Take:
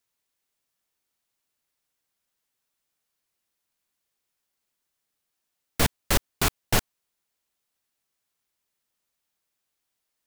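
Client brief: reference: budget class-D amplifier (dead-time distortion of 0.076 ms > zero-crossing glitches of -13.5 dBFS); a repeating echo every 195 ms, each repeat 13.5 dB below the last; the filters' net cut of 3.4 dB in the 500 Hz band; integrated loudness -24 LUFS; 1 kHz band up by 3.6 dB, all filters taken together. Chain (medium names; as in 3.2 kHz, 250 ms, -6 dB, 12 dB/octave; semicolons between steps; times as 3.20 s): peaking EQ 500 Hz -6.5 dB; peaking EQ 1 kHz +6.5 dB; feedback delay 195 ms, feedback 21%, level -13.5 dB; dead-time distortion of 0.076 ms; zero-crossing glitches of -13.5 dBFS; trim +0.5 dB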